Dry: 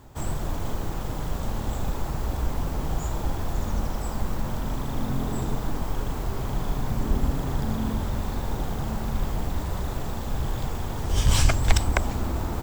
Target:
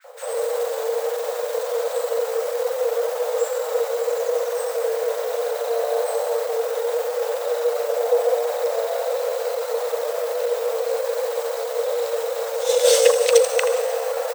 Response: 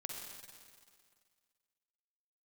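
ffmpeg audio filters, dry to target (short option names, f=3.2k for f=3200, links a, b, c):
-filter_complex "[0:a]equalizer=f=800:w=2.7:g=-2.5,areverse,acompressor=mode=upward:threshold=-24dB:ratio=2.5,areverse,acrossover=split=1000[a][b];[a]adelay=40[c];[c][b]amix=inputs=2:normalize=0,afreqshift=450,asplit=2[d][e];[1:a]atrim=start_sample=2205,highshelf=f=6.1k:g=9,adelay=74[f];[e][f]afir=irnorm=-1:irlink=0,volume=-8.5dB[g];[d][g]amix=inputs=2:normalize=0,atempo=0.88,adynamicequalizer=threshold=0.0112:dfrequency=2700:dqfactor=0.7:tfrequency=2700:tqfactor=0.7:attack=5:release=100:ratio=0.375:range=2:mode=boostabove:tftype=highshelf,volume=2dB"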